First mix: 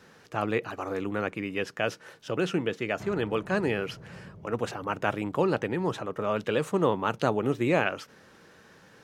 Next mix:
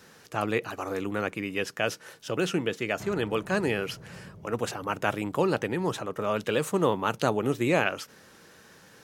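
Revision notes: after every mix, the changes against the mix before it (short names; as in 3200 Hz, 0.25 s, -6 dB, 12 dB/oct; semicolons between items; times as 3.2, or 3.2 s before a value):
master: remove LPF 3200 Hz 6 dB/oct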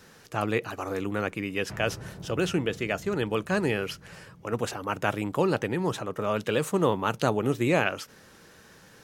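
background: entry -1.30 s; master: add low shelf 77 Hz +10 dB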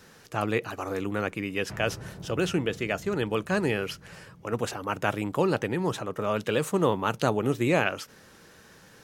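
none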